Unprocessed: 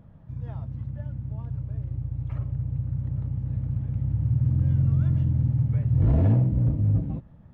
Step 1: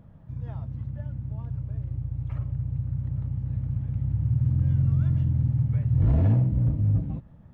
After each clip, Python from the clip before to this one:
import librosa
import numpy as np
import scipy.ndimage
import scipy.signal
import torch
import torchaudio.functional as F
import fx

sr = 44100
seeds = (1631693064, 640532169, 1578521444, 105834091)

y = fx.dynamic_eq(x, sr, hz=410.0, q=0.73, threshold_db=-38.0, ratio=4.0, max_db=-4)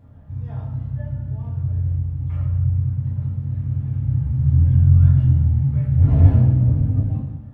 y = fx.rev_fdn(x, sr, rt60_s=1.1, lf_ratio=1.1, hf_ratio=0.85, size_ms=68.0, drr_db=-6.5)
y = F.gain(torch.from_numpy(y), -3.0).numpy()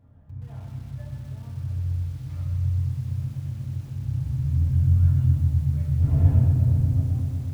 y = fx.echo_crushed(x, sr, ms=123, feedback_pct=80, bits=7, wet_db=-9)
y = F.gain(torch.from_numpy(y), -8.0).numpy()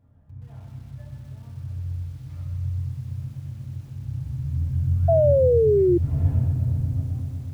y = fx.spec_paint(x, sr, seeds[0], shape='fall', start_s=5.08, length_s=0.9, low_hz=340.0, high_hz=680.0, level_db=-14.0)
y = F.gain(torch.from_numpy(y), -3.5).numpy()